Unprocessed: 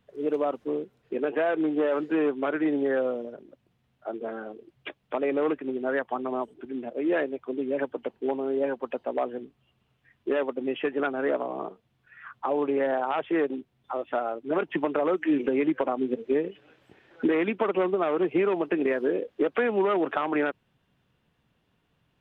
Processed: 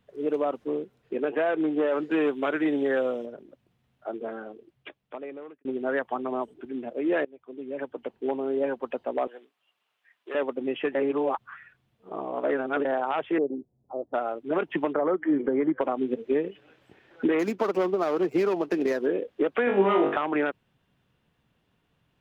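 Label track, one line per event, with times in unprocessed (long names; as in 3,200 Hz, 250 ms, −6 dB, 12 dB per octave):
2.110000	3.260000	high-shelf EQ 3,100 Hz +11 dB
4.190000	5.650000	fade out
7.250000	8.350000	fade in, from −20.5 dB
9.270000	10.350000	high-pass filter 790 Hz
10.950000	12.850000	reverse
13.380000	14.140000	inverse Chebyshev low-pass filter stop band from 2,300 Hz, stop band 60 dB
14.930000	15.810000	Savitzky-Golay smoothing over 41 samples
17.390000	19.060000	running median over 15 samples
19.650000	20.170000	flutter between parallel walls apart 3.5 metres, dies away in 0.43 s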